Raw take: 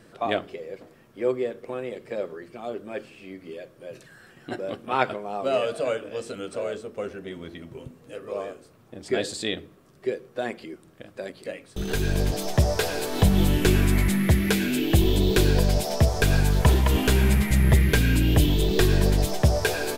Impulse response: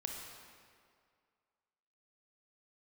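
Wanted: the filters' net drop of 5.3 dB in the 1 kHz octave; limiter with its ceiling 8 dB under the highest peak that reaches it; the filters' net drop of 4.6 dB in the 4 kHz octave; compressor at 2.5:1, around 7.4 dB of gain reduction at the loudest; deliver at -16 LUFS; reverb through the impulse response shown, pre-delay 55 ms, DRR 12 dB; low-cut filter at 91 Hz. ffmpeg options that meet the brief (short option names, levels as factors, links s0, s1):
-filter_complex "[0:a]highpass=91,equalizer=f=1000:t=o:g=-7.5,equalizer=f=4000:t=o:g=-5.5,acompressor=threshold=0.0447:ratio=2.5,alimiter=limit=0.0841:level=0:latency=1,asplit=2[s0][s1];[1:a]atrim=start_sample=2205,adelay=55[s2];[s1][s2]afir=irnorm=-1:irlink=0,volume=0.251[s3];[s0][s3]amix=inputs=2:normalize=0,volume=7.5"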